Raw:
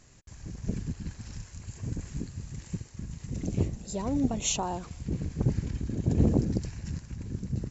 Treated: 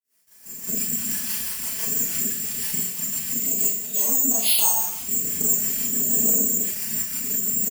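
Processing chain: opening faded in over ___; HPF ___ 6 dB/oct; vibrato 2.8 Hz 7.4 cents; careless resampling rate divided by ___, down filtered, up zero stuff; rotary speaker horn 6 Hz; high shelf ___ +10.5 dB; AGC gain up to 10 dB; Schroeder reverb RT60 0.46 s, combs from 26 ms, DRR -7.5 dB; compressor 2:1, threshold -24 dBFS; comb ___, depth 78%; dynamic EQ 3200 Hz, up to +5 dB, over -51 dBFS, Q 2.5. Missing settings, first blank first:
1.16 s, 1200 Hz, 6×, 6400 Hz, 4.6 ms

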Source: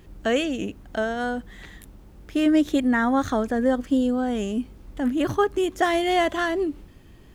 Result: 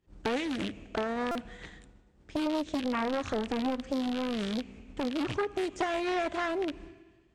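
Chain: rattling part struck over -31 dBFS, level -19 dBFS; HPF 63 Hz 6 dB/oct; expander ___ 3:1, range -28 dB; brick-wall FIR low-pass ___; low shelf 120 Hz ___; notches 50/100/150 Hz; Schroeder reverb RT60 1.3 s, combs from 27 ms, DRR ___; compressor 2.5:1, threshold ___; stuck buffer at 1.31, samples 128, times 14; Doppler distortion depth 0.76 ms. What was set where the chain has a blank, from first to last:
-39 dBFS, 9000 Hz, +3.5 dB, 20 dB, -32 dBFS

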